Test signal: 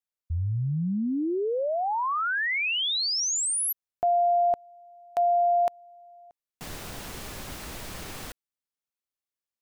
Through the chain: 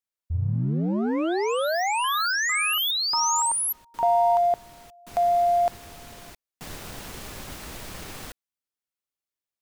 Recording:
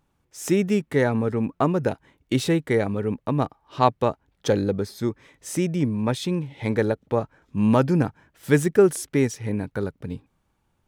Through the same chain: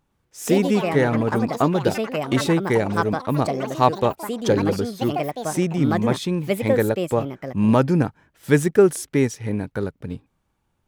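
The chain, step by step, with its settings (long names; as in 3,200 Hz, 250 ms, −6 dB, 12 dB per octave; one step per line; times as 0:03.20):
in parallel at −8 dB: dead-zone distortion −39 dBFS
on the sum: delay with pitch and tempo change per echo 116 ms, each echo +5 semitones, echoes 3, each echo −6 dB
level −1 dB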